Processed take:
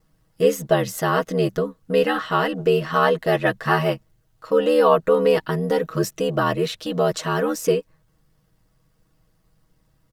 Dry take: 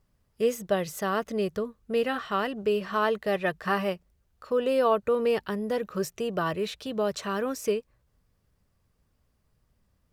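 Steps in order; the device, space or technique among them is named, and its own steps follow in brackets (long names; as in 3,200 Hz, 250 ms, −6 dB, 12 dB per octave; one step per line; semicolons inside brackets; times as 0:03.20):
notch filter 2,400 Hz, Q 16
ring-modulated robot voice (ring modulation 39 Hz; comb filter 6.3 ms, depth 75%)
level +8.5 dB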